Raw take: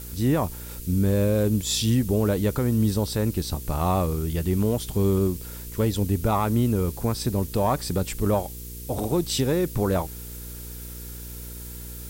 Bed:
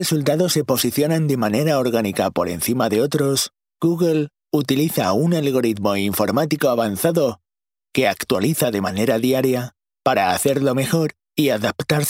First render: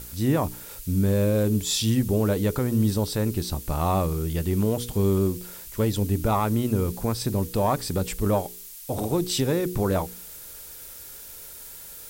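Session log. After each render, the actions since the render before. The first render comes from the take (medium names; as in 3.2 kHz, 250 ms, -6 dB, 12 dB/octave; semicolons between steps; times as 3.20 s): de-hum 60 Hz, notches 8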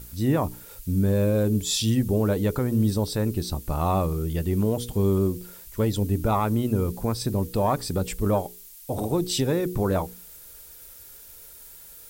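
noise reduction 6 dB, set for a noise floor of -42 dBFS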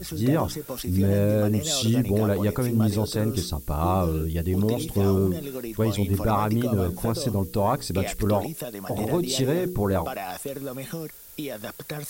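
add bed -15.5 dB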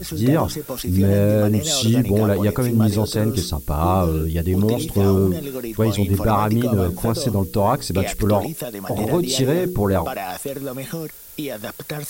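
trim +5 dB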